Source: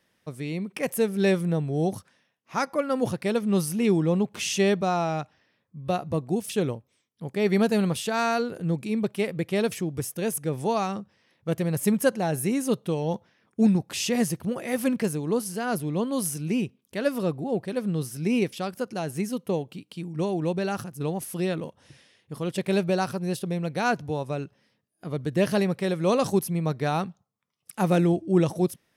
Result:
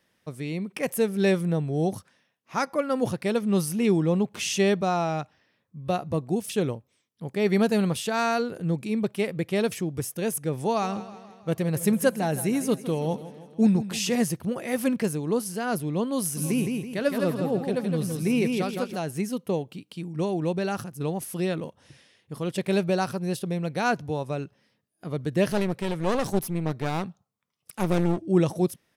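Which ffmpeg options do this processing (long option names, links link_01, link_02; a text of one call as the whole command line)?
ffmpeg -i in.wav -filter_complex "[0:a]asettb=1/sr,asplit=3[link_01][link_02][link_03];[link_01]atrim=end=10.664[link_04];[link_02]atrim=start=10.66:end=14.15,asetpts=PTS-STARTPTS,afade=type=in:duration=0.004:curve=qsin,afade=type=out:start_time=3.486:duration=0.004:curve=qsin,aecho=1:1:160|320|480|640|800:0.188|0.104|0.057|0.0313|0.0172,atrim=end_sample=153909[link_05];[link_03]atrim=start=14.146[link_06];[link_04][link_05]acrossfade=duration=0.004:curve1=hsin:curve2=qsin[link_07];[link_07][link_06]acrossfade=duration=0.004:curve1=qsin:curve2=hsin,asplit=3[link_08][link_09][link_10];[link_08]afade=type=out:start_time=16.36:duration=0.02[link_11];[link_09]aecho=1:1:164|328|492|656|820:0.631|0.24|0.0911|0.0346|0.0132,afade=type=in:start_time=16.36:duration=0.02,afade=type=out:start_time=18.95:duration=0.02[link_12];[link_10]afade=type=in:start_time=18.95:duration=0.02[link_13];[link_11][link_12][link_13]amix=inputs=3:normalize=0,asettb=1/sr,asplit=3[link_14][link_15][link_16];[link_14]atrim=end=25.484[link_17];[link_15]atrim=start=25.48:end=28.27,asetpts=PTS-STARTPTS,afade=type=in:duration=0.004:curve=qsin,afade=type=out:start_time=2.786:duration=0.004:curve=qsin,aeval=exprs='clip(val(0),-1,0.0211)':channel_layout=same[link_18];[link_16]atrim=start=28.266[link_19];[link_17][link_18]acrossfade=duration=0.004:curve1=hsin:curve2=qsin[link_20];[link_20][link_19]acrossfade=duration=0.004:curve1=qsin:curve2=hsin" out.wav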